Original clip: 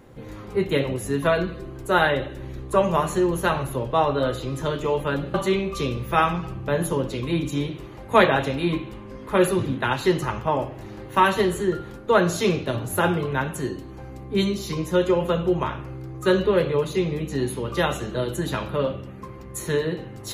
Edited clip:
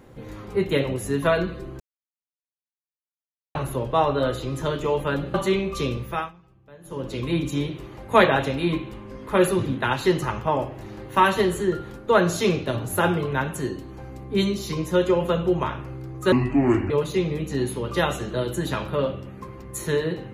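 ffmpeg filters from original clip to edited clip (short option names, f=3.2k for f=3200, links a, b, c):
-filter_complex "[0:a]asplit=7[a][b][c][d][e][f][g];[a]atrim=end=1.8,asetpts=PTS-STARTPTS,afade=t=out:st=1.796:d=0.004:c=hsin[h];[b]atrim=start=1.8:end=3.55,asetpts=PTS-STARTPTS,volume=0[i];[c]atrim=start=3.55:end=6.32,asetpts=PTS-STARTPTS,afade=t=in:d=0.004:c=hsin,afade=t=out:st=2.39:d=0.38:silence=0.0630957[j];[d]atrim=start=6.32:end=6.83,asetpts=PTS-STARTPTS,volume=-24dB[k];[e]atrim=start=6.83:end=16.324,asetpts=PTS-STARTPTS,afade=t=in:d=0.38:silence=0.0630957[l];[f]atrim=start=16.32:end=16.71,asetpts=PTS-STARTPTS,asetrate=29547,aresample=44100,atrim=end_sample=25670,asetpts=PTS-STARTPTS[m];[g]atrim=start=16.706[n];[h][i][j][k][l]concat=n=5:v=0:a=1[o];[o][m]acrossfade=d=0.004:c1=hsin:c2=hsin[p];[p][n]acrossfade=d=0.004:c1=hsin:c2=hsin"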